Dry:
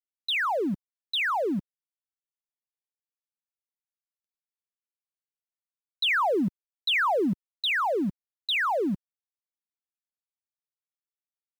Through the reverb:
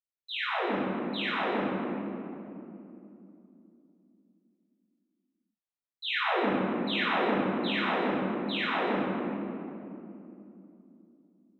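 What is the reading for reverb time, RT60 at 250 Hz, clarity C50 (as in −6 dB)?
2.9 s, 4.6 s, −5.0 dB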